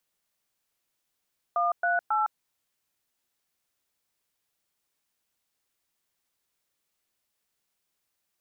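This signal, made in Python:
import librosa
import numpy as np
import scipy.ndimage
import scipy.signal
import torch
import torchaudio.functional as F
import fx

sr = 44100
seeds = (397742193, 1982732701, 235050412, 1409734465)

y = fx.dtmf(sr, digits='138', tone_ms=159, gap_ms=113, level_db=-25.0)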